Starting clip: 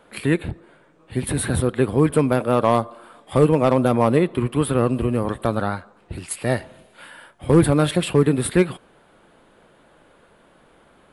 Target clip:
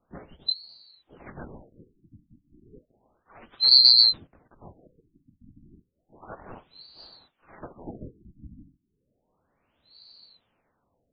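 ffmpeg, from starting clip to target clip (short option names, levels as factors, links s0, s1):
-filter_complex "[0:a]afftfilt=real='real(if(lt(b,736),b+184*(1-2*mod(floor(b/184),2)),b),0)':imag='imag(if(lt(b,736),b+184*(1-2*mod(floor(b/184),2)),b),0)':win_size=2048:overlap=0.75,asplit=2[s0][s1];[s1]asetrate=55563,aresample=44100,atempo=0.793701,volume=0.891[s2];[s0][s2]amix=inputs=2:normalize=0,afftfilt=real='re*lt(b*sr/1024,300*pow(4900/300,0.5+0.5*sin(2*PI*0.32*pts/sr)))':imag='im*lt(b*sr/1024,300*pow(4900/300,0.5+0.5*sin(2*PI*0.32*pts/sr)))':win_size=1024:overlap=0.75,volume=1.41"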